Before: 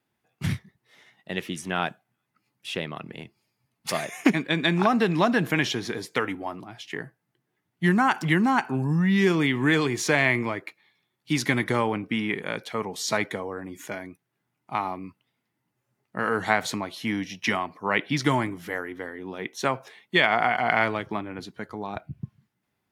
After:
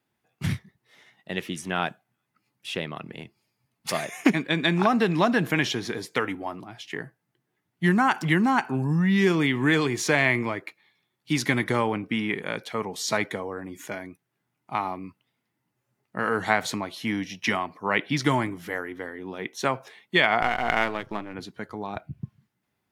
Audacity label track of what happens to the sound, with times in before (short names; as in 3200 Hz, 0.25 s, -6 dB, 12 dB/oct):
20.420000	21.340000	half-wave gain negative side -7 dB